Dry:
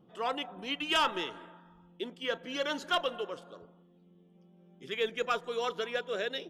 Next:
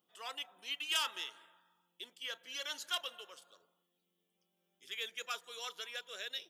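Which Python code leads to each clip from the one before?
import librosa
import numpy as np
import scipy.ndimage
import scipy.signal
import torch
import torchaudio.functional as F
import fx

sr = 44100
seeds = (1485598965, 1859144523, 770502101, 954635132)

y = np.diff(x, prepend=0.0)
y = F.gain(torch.from_numpy(y), 4.0).numpy()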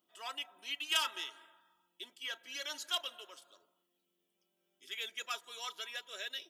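y = x + 0.51 * np.pad(x, (int(3.1 * sr / 1000.0), 0))[:len(x)]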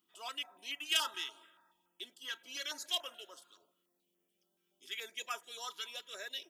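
y = fx.filter_held_notch(x, sr, hz=7.0, low_hz=620.0, high_hz=4000.0)
y = F.gain(torch.from_numpy(y), 1.5).numpy()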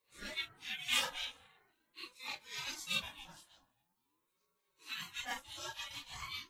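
y = fx.phase_scramble(x, sr, seeds[0], window_ms=100)
y = fx.ring_lfo(y, sr, carrier_hz=570.0, swing_pct=35, hz=0.44)
y = F.gain(torch.from_numpy(y), 2.0).numpy()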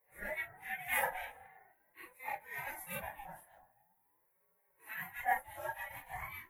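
y = fx.curve_eq(x, sr, hz=(180.0, 270.0, 770.0, 1200.0, 1900.0, 2900.0, 4600.0, 7700.0, 11000.0), db=(0, -10, 13, -7, 8, -17, -29, -17, 7))
y = F.gain(torch.from_numpy(y), 2.5).numpy()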